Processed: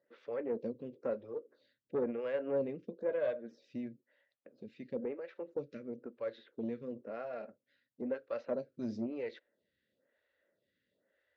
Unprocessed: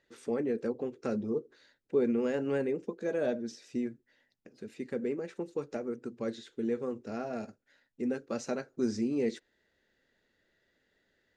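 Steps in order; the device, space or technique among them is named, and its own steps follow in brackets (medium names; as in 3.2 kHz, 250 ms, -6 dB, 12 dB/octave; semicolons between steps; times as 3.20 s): vibe pedal into a guitar amplifier (lamp-driven phase shifter 1 Hz; valve stage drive 24 dB, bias 0.35; cabinet simulation 81–4100 Hz, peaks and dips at 380 Hz -4 dB, 560 Hz +10 dB, 820 Hz -5 dB); trim -2.5 dB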